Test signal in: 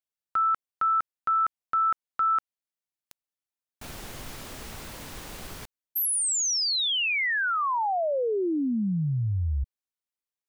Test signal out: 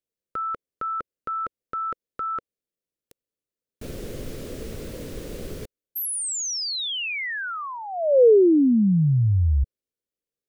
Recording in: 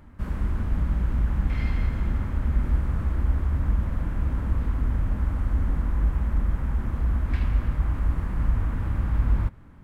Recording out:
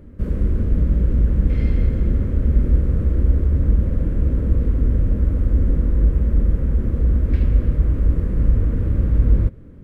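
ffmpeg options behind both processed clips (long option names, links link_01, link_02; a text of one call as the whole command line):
ffmpeg -i in.wav -af "lowshelf=frequency=640:width_type=q:width=3:gain=9,volume=-2dB" out.wav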